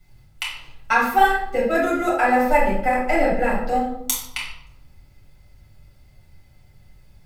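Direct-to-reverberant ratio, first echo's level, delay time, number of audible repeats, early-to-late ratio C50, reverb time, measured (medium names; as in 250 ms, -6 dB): -7.0 dB, no echo, no echo, no echo, 2.5 dB, 0.85 s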